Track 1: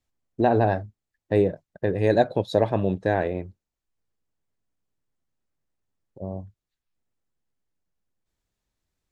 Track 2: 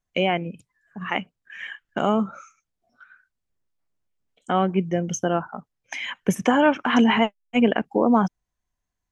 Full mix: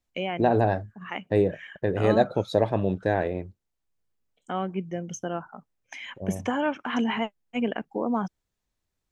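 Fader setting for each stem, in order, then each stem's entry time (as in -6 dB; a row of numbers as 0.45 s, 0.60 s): -1.5 dB, -8.5 dB; 0.00 s, 0.00 s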